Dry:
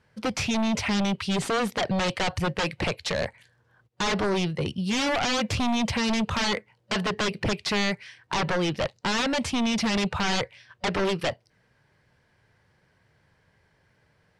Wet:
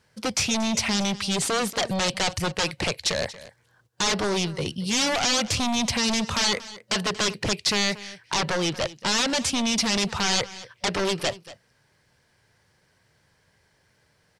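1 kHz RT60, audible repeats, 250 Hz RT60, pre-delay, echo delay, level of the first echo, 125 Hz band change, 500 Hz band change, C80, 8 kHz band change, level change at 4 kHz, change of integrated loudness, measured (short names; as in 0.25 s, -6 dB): none, 1, none, none, 0.233 s, -17.5 dB, -1.5 dB, 0.0 dB, none, +9.5 dB, +5.0 dB, +2.0 dB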